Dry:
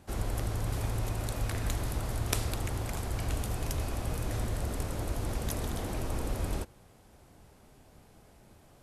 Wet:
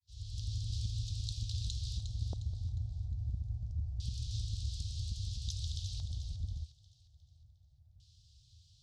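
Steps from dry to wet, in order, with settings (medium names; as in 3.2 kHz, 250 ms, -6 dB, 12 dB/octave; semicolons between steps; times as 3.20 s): fade-in on the opening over 0.56 s; inverse Chebyshev band-stop 210–2200 Hz, stop band 50 dB; compression, threshold -32 dBFS, peak gain reduction 6.5 dB; band-pass 130–6000 Hz; LFO low-pass square 0.25 Hz 740–3500 Hz; on a send: feedback echo behind a high-pass 357 ms, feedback 40%, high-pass 1.9 kHz, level -8 dB; on the sum: trim +12.5 dB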